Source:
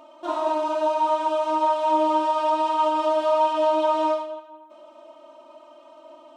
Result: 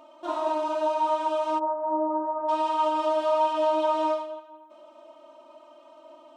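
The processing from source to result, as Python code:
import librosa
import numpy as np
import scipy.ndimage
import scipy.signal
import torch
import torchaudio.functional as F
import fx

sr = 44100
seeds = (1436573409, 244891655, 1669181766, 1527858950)

y = fx.gaussian_blur(x, sr, sigma=7.4, at=(1.58, 2.48), fade=0.02)
y = F.gain(torch.from_numpy(y), -3.0).numpy()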